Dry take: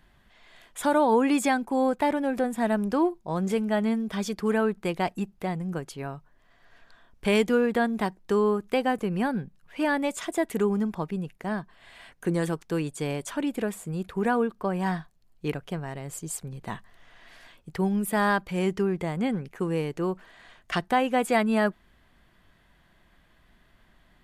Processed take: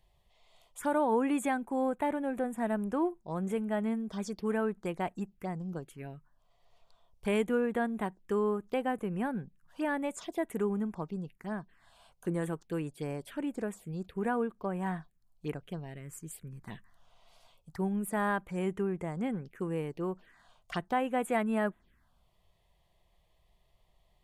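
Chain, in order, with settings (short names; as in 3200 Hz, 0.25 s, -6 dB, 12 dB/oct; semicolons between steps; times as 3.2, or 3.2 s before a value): envelope phaser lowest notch 240 Hz, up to 5000 Hz, full sweep at -24.5 dBFS; gain -6.5 dB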